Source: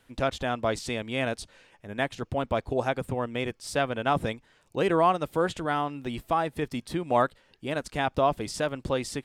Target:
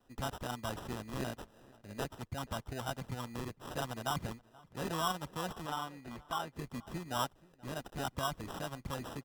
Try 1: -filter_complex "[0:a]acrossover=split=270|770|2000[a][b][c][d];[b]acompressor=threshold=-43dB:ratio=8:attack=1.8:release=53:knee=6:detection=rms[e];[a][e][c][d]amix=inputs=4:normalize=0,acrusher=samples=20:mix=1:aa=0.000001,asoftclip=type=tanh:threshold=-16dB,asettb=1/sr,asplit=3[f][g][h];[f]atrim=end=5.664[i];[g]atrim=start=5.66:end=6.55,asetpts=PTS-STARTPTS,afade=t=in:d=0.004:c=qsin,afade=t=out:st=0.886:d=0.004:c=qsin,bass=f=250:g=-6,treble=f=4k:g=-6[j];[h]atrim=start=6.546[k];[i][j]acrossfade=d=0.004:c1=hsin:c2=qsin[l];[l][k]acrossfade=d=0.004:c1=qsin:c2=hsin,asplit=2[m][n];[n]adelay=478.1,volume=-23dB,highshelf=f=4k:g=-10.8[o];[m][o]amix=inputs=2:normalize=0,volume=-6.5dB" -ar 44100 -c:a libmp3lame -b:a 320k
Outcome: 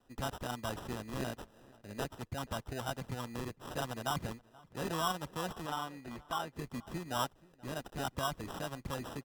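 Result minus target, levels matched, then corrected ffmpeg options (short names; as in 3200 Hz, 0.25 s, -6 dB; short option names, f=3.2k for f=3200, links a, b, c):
compressor: peak gain reduction -8 dB
-filter_complex "[0:a]acrossover=split=270|770|2000[a][b][c][d];[b]acompressor=threshold=-52dB:ratio=8:attack=1.8:release=53:knee=6:detection=rms[e];[a][e][c][d]amix=inputs=4:normalize=0,acrusher=samples=20:mix=1:aa=0.000001,asoftclip=type=tanh:threshold=-16dB,asettb=1/sr,asplit=3[f][g][h];[f]atrim=end=5.664[i];[g]atrim=start=5.66:end=6.55,asetpts=PTS-STARTPTS,afade=t=in:d=0.004:c=qsin,afade=t=out:st=0.886:d=0.004:c=qsin,bass=f=250:g=-6,treble=f=4k:g=-6[j];[h]atrim=start=6.546[k];[i][j]acrossfade=d=0.004:c1=hsin:c2=qsin[l];[l][k]acrossfade=d=0.004:c1=qsin:c2=hsin,asplit=2[m][n];[n]adelay=478.1,volume=-23dB,highshelf=f=4k:g=-10.8[o];[m][o]amix=inputs=2:normalize=0,volume=-6.5dB" -ar 44100 -c:a libmp3lame -b:a 320k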